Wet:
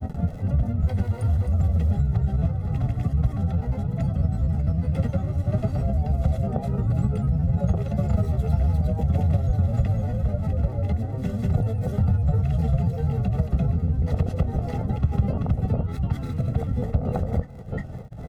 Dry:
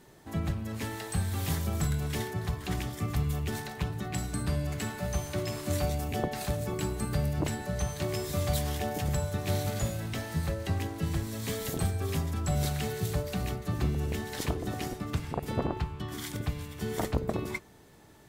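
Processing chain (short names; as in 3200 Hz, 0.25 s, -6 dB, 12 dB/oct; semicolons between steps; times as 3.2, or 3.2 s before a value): high shelf 2800 Hz -10.5 dB; crackle 39/s -46 dBFS; upward compressor, threshold -35 dBFS; tilt shelf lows +9 dB, about 710 Hz; early reflections 23 ms -11.5 dB, 40 ms -11 dB; compressor, threshold -25 dBFS, peak gain reduction 10.5 dB; grains, spray 0.368 s, pitch spread up and down by 3 st; comb 1.5 ms, depth 80%; gain +4.5 dB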